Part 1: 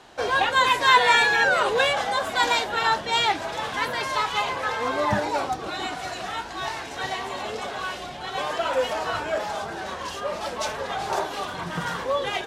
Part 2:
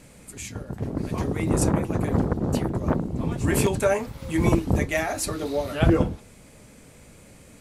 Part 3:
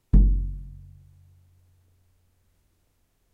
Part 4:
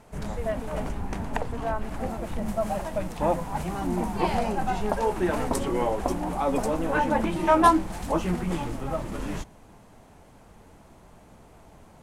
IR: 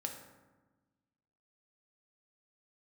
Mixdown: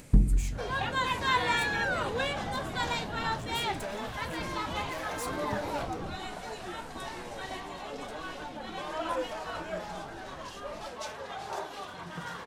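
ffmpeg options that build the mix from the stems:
-filter_complex "[0:a]adelay=400,volume=-6dB[link_01];[1:a]acompressor=threshold=-24dB:ratio=6,asoftclip=type=hard:threshold=-33dB,volume=0dB[link_02];[2:a]volume=2dB[link_03];[3:a]adelay=1450,volume=-14dB[link_04];[link_01][link_02][link_03][link_04]amix=inputs=4:normalize=0,flanger=delay=6.9:depth=6.7:regen=-85:speed=1.2:shape=triangular,acompressor=mode=upward:threshold=-46dB:ratio=2.5"

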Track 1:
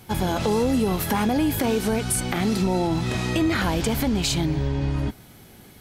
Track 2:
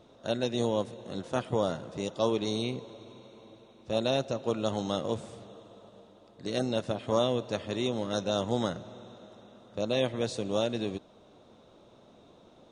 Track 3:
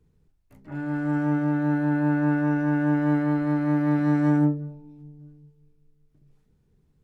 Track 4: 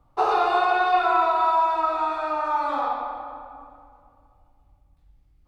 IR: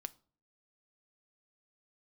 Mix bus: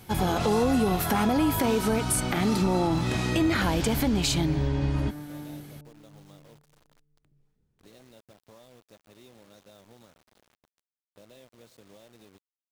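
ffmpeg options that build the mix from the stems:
-filter_complex "[0:a]volume=-2dB[link_01];[1:a]alimiter=limit=-19.5dB:level=0:latency=1:release=486,acompressor=threshold=-39dB:ratio=2,acrusher=bits=6:mix=0:aa=0.000001,adelay=1400,volume=-15.5dB[link_02];[2:a]acompressor=threshold=-30dB:ratio=6,adelay=1100,volume=-8dB[link_03];[3:a]volume=-14.5dB[link_04];[link_01][link_02][link_03][link_04]amix=inputs=4:normalize=0"

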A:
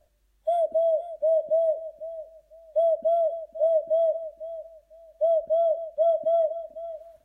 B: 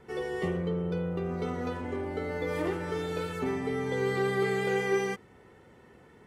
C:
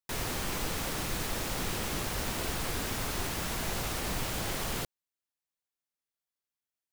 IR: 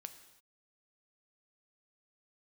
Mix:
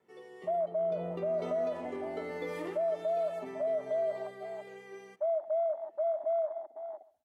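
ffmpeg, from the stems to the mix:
-filter_complex "[0:a]afwtdn=0.0224,equalizer=frequency=125:width_type=o:width=1:gain=-9,equalizer=frequency=250:width_type=o:width=1:gain=4,equalizer=frequency=500:width_type=o:width=1:gain=-9,equalizer=frequency=1000:width_type=o:width=1:gain=3,equalizer=frequency=2000:width_type=o:width=1:gain=-4,volume=-2dB,asplit=3[link_01][link_02][link_03];[link_02]volume=-12dB[link_04];[link_03]volume=-19dB[link_05];[1:a]highpass=200,bandreject=frequency=1500:width=15,volume=-6.5dB,afade=type=in:start_time=0.76:duration=0.25:silence=0.251189,afade=type=out:start_time=2.44:duration=0.43:silence=0.421697,afade=type=out:start_time=3.73:duration=0.66:silence=0.375837,asplit=2[link_06][link_07];[link_07]volume=-5dB[link_08];[3:a]atrim=start_sample=2205[link_09];[link_04][link_08]amix=inputs=2:normalize=0[link_10];[link_10][link_09]afir=irnorm=-1:irlink=0[link_11];[link_05]aecho=0:1:134:1[link_12];[link_01][link_06][link_11][link_12]amix=inputs=4:normalize=0,highpass=frequency=86:width=0.5412,highpass=frequency=86:width=1.3066,alimiter=level_in=1.5dB:limit=-24dB:level=0:latency=1:release=80,volume=-1.5dB"

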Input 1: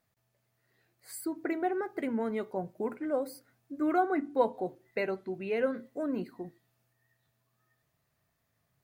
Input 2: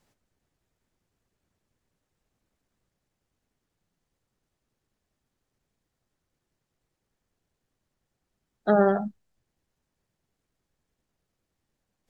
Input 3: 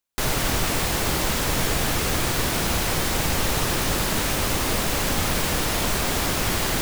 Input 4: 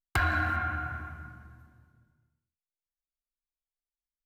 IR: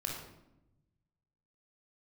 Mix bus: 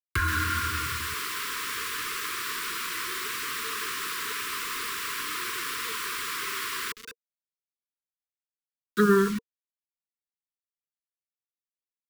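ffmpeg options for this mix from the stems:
-filter_complex "[0:a]equalizer=frequency=125:width_type=o:width=1:gain=-10,equalizer=frequency=250:width_type=o:width=1:gain=-9,equalizer=frequency=500:width_type=o:width=1:gain=11,equalizer=frequency=1000:width_type=o:width=1:gain=-4,equalizer=frequency=2000:width_type=o:width=1:gain=12,equalizer=frequency=4000:width_type=o:width=1:gain=7,equalizer=frequency=8000:width_type=o:width=1:gain=10,adelay=1450,volume=-19dB[link_01];[1:a]highshelf=frequency=2100:gain=8.5,adelay=300,volume=2dB[link_02];[2:a]highpass=980,highshelf=frequency=2600:gain=-11,bandreject=frequency=6400:width=11,adelay=100,volume=0dB[link_03];[3:a]volume=0.5dB,asplit=3[link_04][link_05][link_06];[link_04]atrim=end=1.14,asetpts=PTS-STARTPTS,afade=type=out:start_time=1.136:duration=0.004:curve=hsin[link_07];[link_05]atrim=start=1.14:end=1.74,asetpts=PTS-STARTPTS,volume=0[link_08];[link_06]atrim=start=1.74,asetpts=PTS-STARTPTS,afade=type=in:duration=0.004:curve=hsin[link_09];[link_07][link_08][link_09]concat=n=3:v=0:a=1[link_10];[link_01][link_02][link_03][link_10]amix=inputs=4:normalize=0,acrusher=bits=5:mix=0:aa=0.000001,asuperstop=centerf=680:order=20:qfactor=1.3"

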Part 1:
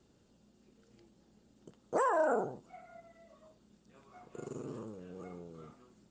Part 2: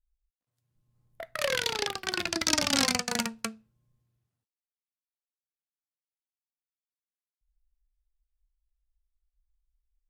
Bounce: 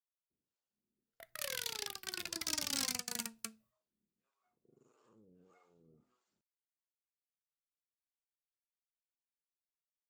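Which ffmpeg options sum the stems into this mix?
ffmpeg -i stem1.wav -i stem2.wav -filter_complex "[0:a]lowshelf=frequency=120:gain=-7.5,alimiter=level_in=6.5dB:limit=-24dB:level=0:latency=1,volume=-6.5dB,acrossover=split=550[link_01][link_02];[link_01]aeval=exprs='val(0)*(1-1/2+1/2*cos(2*PI*1.6*n/s))':channel_layout=same[link_03];[link_02]aeval=exprs='val(0)*(1-1/2-1/2*cos(2*PI*1.6*n/s))':channel_layout=same[link_04];[link_03][link_04]amix=inputs=2:normalize=0,adelay=300,volume=-11.5dB,afade=type=in:start_time=4.69:duration=0.74:silence=0.316228[link_05];[1:a]aemphasis=mode=production:type=75fm,agate=range=-33dB:threshold=-51dB:ratio=3:detection=peak,volume=-14dB[link_06];[link_05][link_06]amix=inputs=2:normalize=0,equalizer=frequency=620:width=1.5:gain=-3.5,asoftclip=type=tanh:threshold=-26.5dB" out.wav

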